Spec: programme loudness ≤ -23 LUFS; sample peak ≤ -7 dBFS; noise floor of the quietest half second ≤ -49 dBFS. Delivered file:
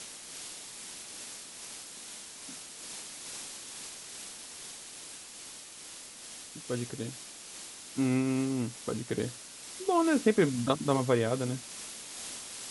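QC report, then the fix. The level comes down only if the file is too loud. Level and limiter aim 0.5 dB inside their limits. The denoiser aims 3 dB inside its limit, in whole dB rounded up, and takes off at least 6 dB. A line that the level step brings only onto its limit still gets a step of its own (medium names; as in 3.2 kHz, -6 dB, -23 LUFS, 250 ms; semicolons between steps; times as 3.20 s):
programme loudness -34.5 LUFS: pass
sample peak -11.5 dBFS: pass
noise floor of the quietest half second -47 dBFS: fail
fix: noise reduction 6 dB, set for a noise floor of -47 dBFS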